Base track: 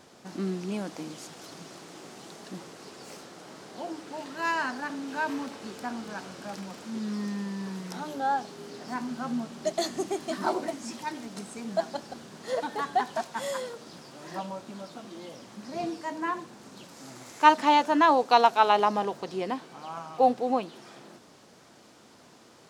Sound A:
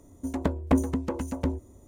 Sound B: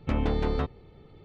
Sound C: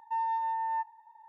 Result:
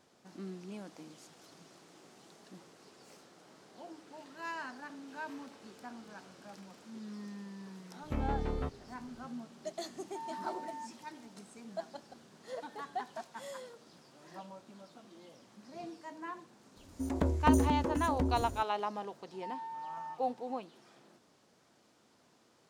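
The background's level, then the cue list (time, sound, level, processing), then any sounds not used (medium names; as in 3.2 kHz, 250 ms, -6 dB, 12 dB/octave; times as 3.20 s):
base track -12.5 dB
8.03 s: add B -8 dB + treble shelf 4.2 kHz -11.5 dB
10.04 s: add C -13 dB
16.76 s: add A -5.5 dB + decay stretcher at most 45 dB/s
19.32 s: add C -5 dB + compression, threshold -36 dBFS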